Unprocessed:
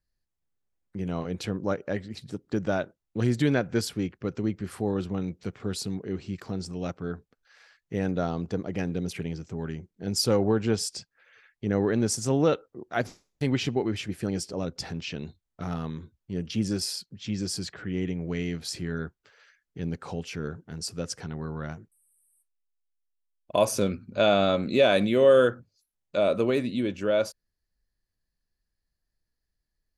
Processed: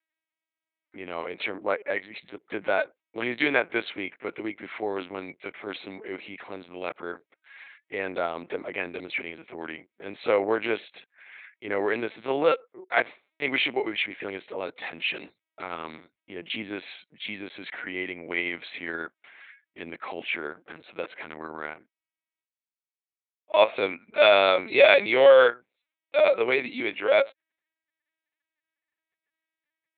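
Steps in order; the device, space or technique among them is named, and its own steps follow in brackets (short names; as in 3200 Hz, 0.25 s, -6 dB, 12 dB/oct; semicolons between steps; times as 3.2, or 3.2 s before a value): talking toy (LPC vocoder at 8 kHz pitch kept; HPF 520 Hz 12 dB/oct; bell 2200 Hz +11 dB 0.43 oct); gain +5.5 dB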